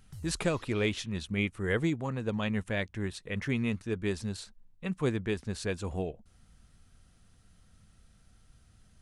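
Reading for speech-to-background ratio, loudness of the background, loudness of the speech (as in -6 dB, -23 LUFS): 19.0 dB, -52.0 LUFS, -33.0 LUFS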